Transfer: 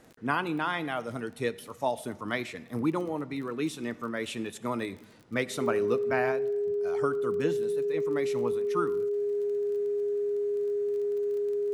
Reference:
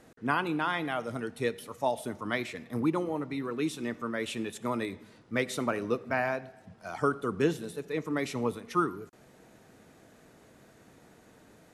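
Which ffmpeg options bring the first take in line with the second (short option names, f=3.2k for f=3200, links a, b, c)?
-af "adeclick=t=4,bandreject=f=410:w=30,asetnsamples=n=441:p=0,asendcmd='6.32 volume volume 3.5dB',volume=0dB"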